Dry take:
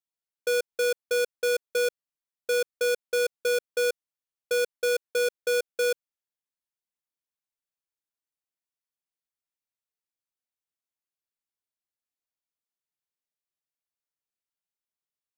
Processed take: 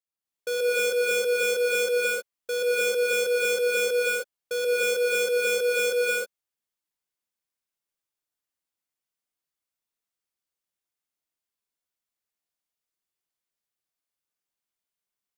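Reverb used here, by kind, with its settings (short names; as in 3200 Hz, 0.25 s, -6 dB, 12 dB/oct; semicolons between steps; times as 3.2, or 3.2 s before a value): non-linear reverb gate 0.34 s rising, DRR -7 dB; gain -4 dB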